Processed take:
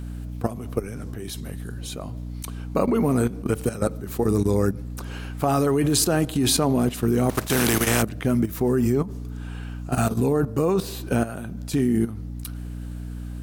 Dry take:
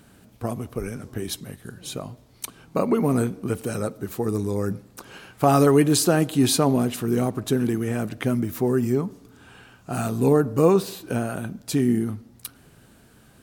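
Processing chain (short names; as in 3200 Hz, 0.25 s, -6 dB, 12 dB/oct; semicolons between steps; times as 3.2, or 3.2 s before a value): 7.29–8.01 spectral contrast lowered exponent 0.5; hum 60 Hz, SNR 13 dB; level quantiser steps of 13 dB; gain +6 dB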